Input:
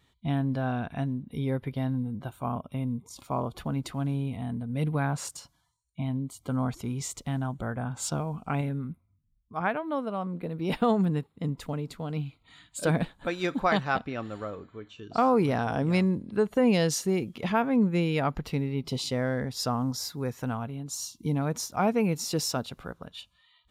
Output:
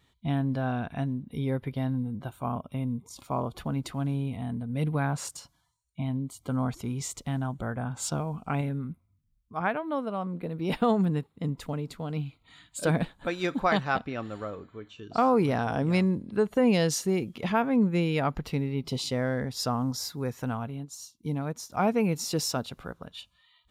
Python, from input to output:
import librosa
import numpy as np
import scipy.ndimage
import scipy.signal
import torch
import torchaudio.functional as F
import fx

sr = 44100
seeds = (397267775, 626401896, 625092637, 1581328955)

y = fx.upward_expand(x, sr, threshold_db=-49.0, expansion=1.5, at=(20.84, 21.69), fade=0.02)